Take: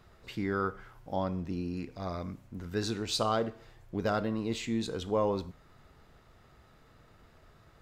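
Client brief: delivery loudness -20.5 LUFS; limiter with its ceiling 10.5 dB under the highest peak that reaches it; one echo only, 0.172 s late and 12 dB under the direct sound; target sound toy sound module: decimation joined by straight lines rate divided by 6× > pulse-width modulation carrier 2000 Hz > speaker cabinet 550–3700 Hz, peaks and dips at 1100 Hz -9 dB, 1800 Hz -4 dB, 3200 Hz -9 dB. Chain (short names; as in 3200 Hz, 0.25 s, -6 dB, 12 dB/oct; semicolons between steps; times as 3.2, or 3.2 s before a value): limiter -27 dBFS; echo 0.172 s -12 dB; decimation joined by straight lines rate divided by 6×; pulse-width modulation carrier 2000 Hz; speaker cabinet 550–3700 Hz, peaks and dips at 1100 Hz -9 dB, 1800 Hz -4 dB, 3200 Hz -9 dB; gain +26.5 dB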